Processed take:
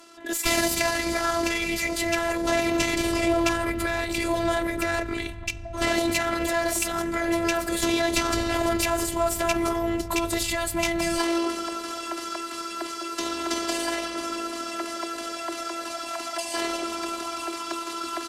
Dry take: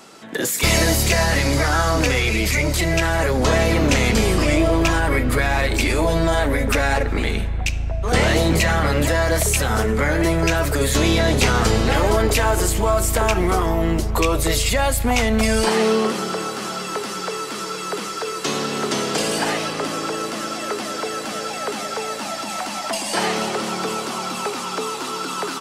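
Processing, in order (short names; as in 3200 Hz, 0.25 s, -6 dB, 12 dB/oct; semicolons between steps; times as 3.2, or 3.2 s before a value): tempo 1.4×; robotiser 337 Hz; added harmonics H 2 -16 dB, 8 -39 dB, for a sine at -0.5 dBFS; gain -3.5 dB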